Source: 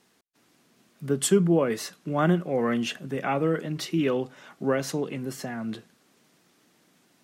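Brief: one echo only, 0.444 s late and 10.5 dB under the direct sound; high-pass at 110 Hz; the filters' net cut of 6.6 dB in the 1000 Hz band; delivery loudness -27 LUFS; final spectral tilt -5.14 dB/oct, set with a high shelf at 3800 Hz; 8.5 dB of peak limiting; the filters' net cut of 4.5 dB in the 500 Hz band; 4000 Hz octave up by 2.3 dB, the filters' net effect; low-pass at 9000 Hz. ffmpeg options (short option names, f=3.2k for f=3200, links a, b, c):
-af "highpass=110,lowpass=9k,equalizer=f=500:t=o:g=-4,equalizer=f=1k:t=o:g=-8,highshelf=f=3.8k:g=-3.5,equalizer=f=4k:t=o:g=6,alimiter=limit=-21dB:level=0:latency=1,aecho=1:1:444:0.299,volume=4.5dB"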